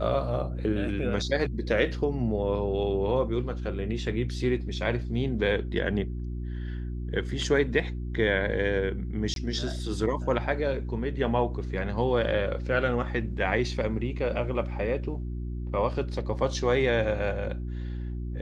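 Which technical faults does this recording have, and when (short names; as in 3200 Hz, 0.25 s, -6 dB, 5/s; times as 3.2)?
hum 60 Hz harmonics 6 -33 dBFS
9.34–9.36 gap 22 ms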